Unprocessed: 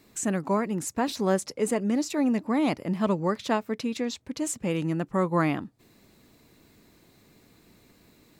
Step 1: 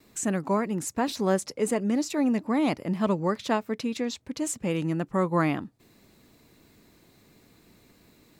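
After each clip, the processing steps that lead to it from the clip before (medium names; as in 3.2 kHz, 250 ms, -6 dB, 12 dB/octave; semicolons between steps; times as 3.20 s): gate with hold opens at -53 dBFS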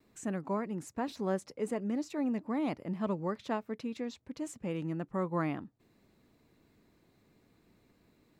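treble shelf 3.4 kHz -9.5 dB; trim -8 dB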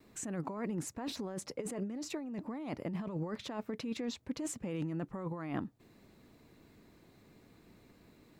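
compressor with a negative ratio -39 dBFS, ratio -1; trim +1 dB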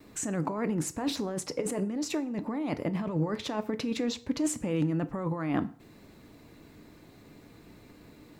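FDN reverb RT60 0.49 s, low-frequency decay 0.85×, high-frequency decay 0.8×, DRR 11 dB; trim +7.5 dB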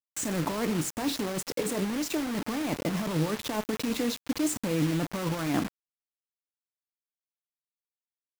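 bit crusher 6-bit; trim +1 dB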